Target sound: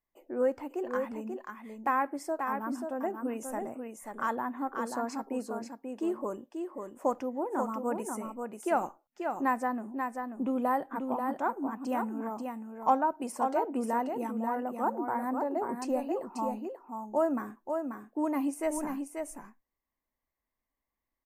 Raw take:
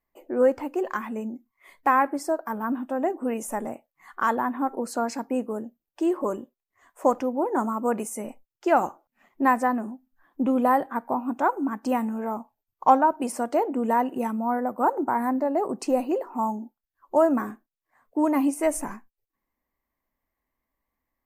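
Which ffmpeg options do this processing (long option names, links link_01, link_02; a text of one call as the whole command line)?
ffmpeg -i in.wav -af "aecho=1:1:536:0.531,volume=-8dB" out.wav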